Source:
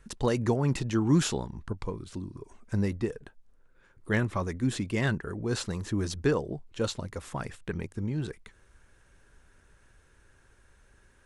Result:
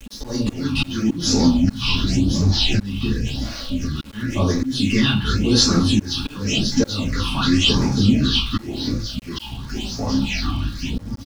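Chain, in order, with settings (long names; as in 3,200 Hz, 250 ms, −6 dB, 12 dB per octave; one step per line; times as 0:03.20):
delay with a high-pass on its return 539 ms, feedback 47%, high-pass 2,000 Hz, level −11.5 dB
delay with pitch and tempo change per echo 181 ms, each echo −5 semitones, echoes 3, each echo −6 dB
downward compressor 6 to 1, threshold −27 dBFS, peak gain reduction 10 dB
flat-topped bell 3,900 Hz +11.5 dB
convolution reverb RT60 0.45 s, pre-delay 4 ms, DRR −7.5 dB
volume swells 318 ms
all-pass phaser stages 6, 0.92 Hz, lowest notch 490–2,900 Hz
centre clipping without the shift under −46.5 dBFS
comb filter 3.6 ms, depth 39%
level +6 dB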